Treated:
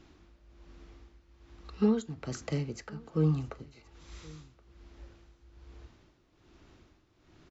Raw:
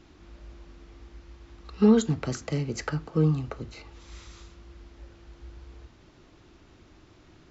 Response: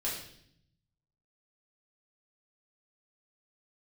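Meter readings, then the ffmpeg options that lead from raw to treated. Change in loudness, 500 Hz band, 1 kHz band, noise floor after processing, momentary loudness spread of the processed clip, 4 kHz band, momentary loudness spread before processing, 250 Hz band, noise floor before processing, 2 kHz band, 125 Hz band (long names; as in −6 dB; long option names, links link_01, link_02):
−6.0 dB, −7.0 dB, −7.5 dB, −67 dBFS, 21 LU, −7.5 dB, 17 LU, −7.0 dB, −56 dBFS, −8.5 dB, −4.5 dB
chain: -filter_complex "[0:a]tremolo=f=1.2:d=0.73,asplit=2[link_01][link_02];[link_02]aecho=0:1:1074:0.0668[link_03];[link_01][link_03]amix=inputs=2:normalize=0,volume=-3dB"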